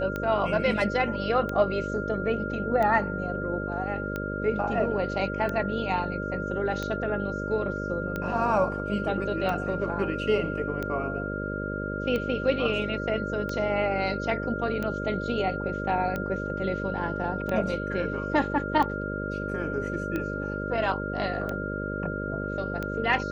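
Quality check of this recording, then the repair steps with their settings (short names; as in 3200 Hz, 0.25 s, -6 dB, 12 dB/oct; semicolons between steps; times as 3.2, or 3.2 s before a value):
buzz 50 Hz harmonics 12 -33 dBFS
tick 45 rpm -18 dBFS
tone 1400 Hz -34 dBFS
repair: de-click; notch 1400 Hz, Q 30; de-hum 50 Hz, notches 12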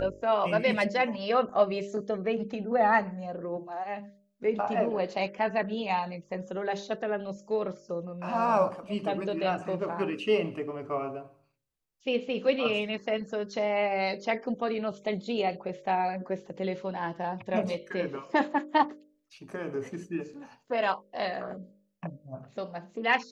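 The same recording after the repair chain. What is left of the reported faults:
none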